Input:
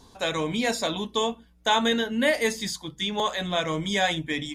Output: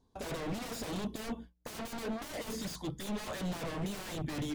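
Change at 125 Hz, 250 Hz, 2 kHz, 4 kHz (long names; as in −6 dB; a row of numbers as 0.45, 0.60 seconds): −5.0, −9.0, −17.5, −17.5 decibels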